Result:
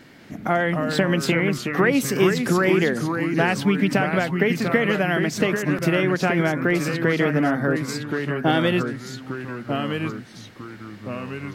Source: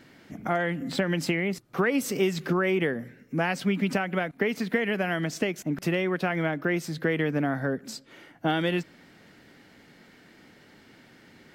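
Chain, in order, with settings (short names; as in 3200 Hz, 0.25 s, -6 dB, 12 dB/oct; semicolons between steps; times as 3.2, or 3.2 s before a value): echoes that change speed 0.211 s, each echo -2 st, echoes 3, each echo -6 dB; gain +5.5 dB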